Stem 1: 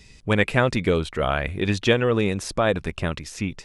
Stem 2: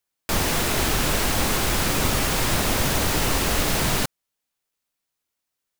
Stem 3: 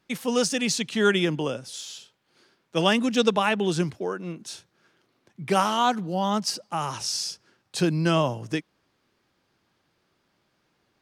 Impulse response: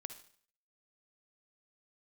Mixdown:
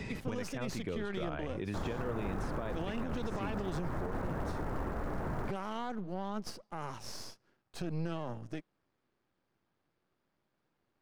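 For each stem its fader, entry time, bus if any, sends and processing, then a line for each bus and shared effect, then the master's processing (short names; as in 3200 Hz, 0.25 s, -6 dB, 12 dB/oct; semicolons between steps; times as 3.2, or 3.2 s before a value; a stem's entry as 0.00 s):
-14.0 dB, 0.00 s, no bus, no send, three-band squash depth 100%
-10.5 dB, 1.45 s, bus A, no send, inverse Chebyshev low-pass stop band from 5400 Hz, stop band 60 dB; short-mantissa float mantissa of 2-bit
-5.5 dB, 0.00 s, bus A, no send, half-wave gain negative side -12 dB
bus A: 0.0 dB, limiter -21.5 dBFS, peak gain reduction 11 dB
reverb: off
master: high shelf 2600 Hz -11.5 dB; limiter -27 dBFS, peak gain reduction 10.5 dB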